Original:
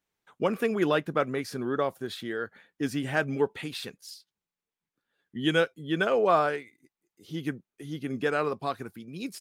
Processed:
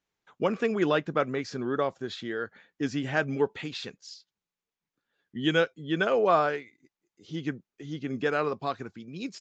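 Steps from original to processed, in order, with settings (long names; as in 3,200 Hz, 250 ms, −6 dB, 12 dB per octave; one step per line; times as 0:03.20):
downsampling to 16,000 Hz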